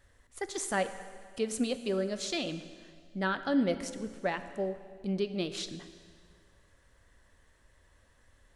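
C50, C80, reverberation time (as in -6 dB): 11.5 dB, 12.5 dB, 1.9 s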